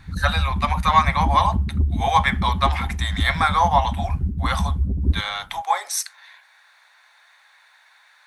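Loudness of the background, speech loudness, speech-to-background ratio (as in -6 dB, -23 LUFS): -25.5 LUFS, -22.0 LUFS, 3.5 dB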